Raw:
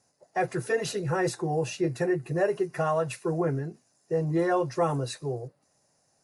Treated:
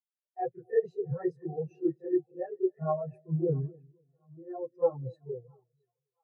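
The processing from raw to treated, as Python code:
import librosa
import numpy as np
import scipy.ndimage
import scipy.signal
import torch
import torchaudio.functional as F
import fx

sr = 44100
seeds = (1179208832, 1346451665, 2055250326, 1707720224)

y = fx.highpass(x, sr, hz=270.0, slope=6, at=(1.64, 2.5))
y = fx.auto_swell(y, sr, attack_ms=740.0, at=(3.65, 4.77), fade=0.02)
y = fx.chorus_voices(y, sr, voices=2, hz=0.69, base_ms=30, depth_ms=4.5, mix_pct=70)
y = fx.echo_split(y, sr, split_hz=670.0, low_ms=253, high_ms=668, feedback_pct=52, wet_db=-10.5)
y = fx.spectral_expand(y, sr, expansion=2.5)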